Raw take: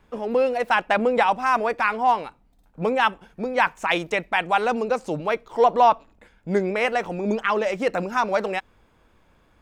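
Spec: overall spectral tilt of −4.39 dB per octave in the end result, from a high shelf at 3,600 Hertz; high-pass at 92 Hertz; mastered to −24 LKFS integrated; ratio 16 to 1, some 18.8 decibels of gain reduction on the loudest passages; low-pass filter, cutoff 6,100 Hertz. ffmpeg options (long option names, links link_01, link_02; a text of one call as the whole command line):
ffmpeg -i in.wav -af "highpass=92,lowpass=6100,highshelf=frequency=3600:gain=-7,acompressor=threshold=-31dB:ratio=16,volume=12dB" out.wav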